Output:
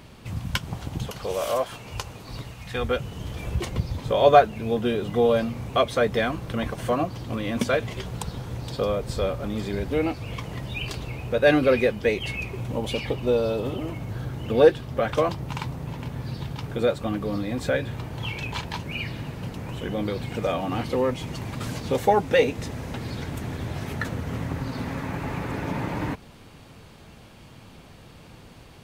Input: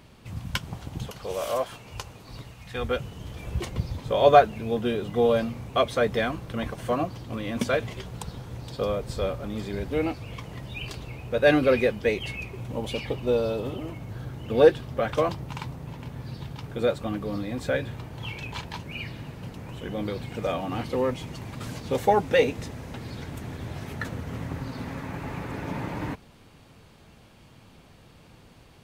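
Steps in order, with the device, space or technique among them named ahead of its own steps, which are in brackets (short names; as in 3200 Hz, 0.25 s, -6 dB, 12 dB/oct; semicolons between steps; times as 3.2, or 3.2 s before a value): parallel compression (in parallel at -1.5 dB: compressor, threshold -33 dBFS, peak gain reduction 21.5 dB)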